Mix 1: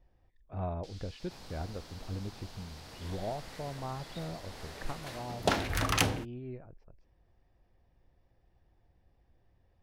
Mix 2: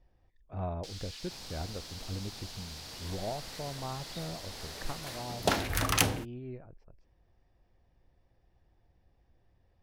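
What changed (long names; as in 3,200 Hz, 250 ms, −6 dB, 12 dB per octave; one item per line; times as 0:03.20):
first sound +7.0 dB
master: add high-shelf EQ 8,300 Hz +9.5 dB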